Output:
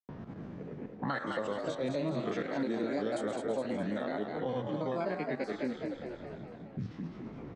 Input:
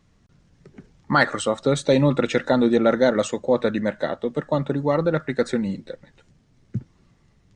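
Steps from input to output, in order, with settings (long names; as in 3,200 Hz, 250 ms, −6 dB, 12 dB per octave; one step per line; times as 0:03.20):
spectrum averaged block by block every 50 ms
brickwall limiter −15 dBFS, peak gain reduction 9 dB
reversed playback
upward compression, threshold −29 dBFS
reversed playback
granular cloud 240 ms, grains 9.2 per second, pitch spread up and down by 3 semitones
low-pass that shuts in the quiet parts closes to 750 Hz, open at −21 dBFS
low-shelf EQ 76 Hz −11.5 dB
on a send: echo with shifted repeats 207 ms, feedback 38%, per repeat +59 Hz, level −6 dB
on the sum: multiband upward and downward compressor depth 70%
level −7.5 dB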